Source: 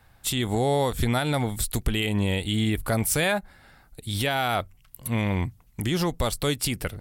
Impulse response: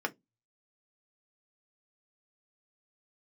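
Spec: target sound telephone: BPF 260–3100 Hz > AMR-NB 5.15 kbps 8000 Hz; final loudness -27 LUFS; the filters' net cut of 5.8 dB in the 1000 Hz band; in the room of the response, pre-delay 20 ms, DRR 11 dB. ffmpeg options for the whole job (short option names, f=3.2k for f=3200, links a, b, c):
-filter_complex "[0:a]equalizer=f=1k:t=o:g=-8.5,asplit=2[a][b];[1:a]atrim=start_sample=2205,adelay=20[c];[b][c]afir=irnorm=-1:irlink=0,volume=-17dB[d];[a][d]amix=inputs=2:normalize=0,highpass=260,lowpass=3.1k,volume=5dB" -ar 8000 -c:a libopencore_amrnb -b:a 5150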